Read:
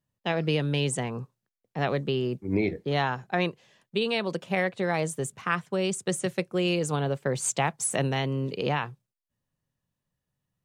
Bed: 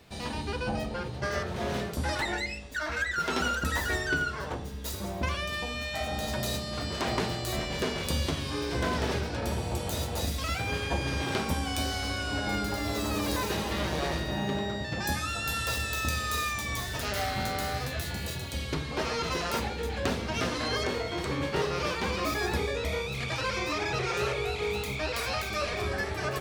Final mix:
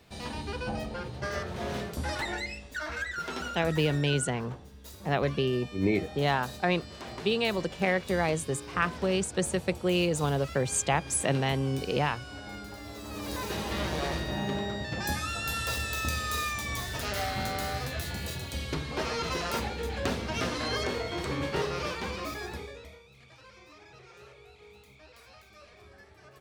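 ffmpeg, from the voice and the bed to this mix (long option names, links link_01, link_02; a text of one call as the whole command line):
ffmpeg -i stem1.wav -i stem2.wav -filter_complex "[0:a]adelay=3300,volume=-0.5dB[link_01];[1:a]volume=8dB,afade=type=out:start_time=2.76:duration=1:silence=0.354813,afade=type=in:start_time=13.03:duration=0.73:silence=0.298538,afade=type=out:start_time=21.54:duration=1.45:silence=0.0841395[link_02];[link_01][link_02]amix=inputs=2:normalize=0" out.wav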